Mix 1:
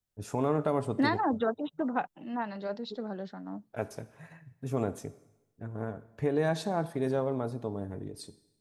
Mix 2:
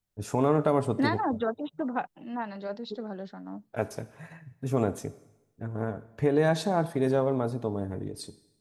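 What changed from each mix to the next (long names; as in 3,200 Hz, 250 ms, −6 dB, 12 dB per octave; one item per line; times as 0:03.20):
first voice +4.5 dB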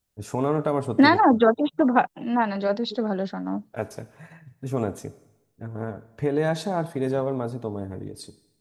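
second voice +11.5 dB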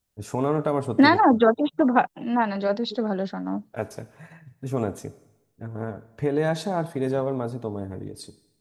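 nothing changed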